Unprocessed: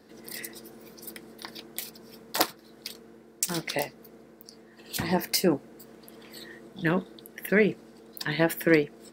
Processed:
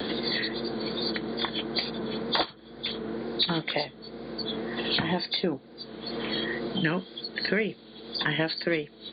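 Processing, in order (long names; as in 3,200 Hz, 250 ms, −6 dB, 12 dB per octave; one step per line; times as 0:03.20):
hearing-aid frequency compression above 3,100 Hz 4 to 1
tape wow and flutter 50 cents
multiband upward and downward compressor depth 100%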